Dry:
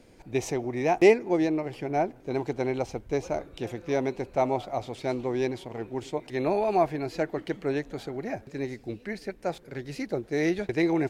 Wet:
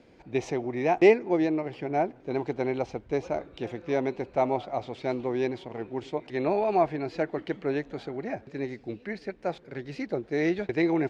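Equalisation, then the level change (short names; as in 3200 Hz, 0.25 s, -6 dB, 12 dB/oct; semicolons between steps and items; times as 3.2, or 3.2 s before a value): HPF 51 Hz; LPF 4100 Hz 12 dB/oct; bell 93 Hz -4 dB 1 oct; 0.0 dB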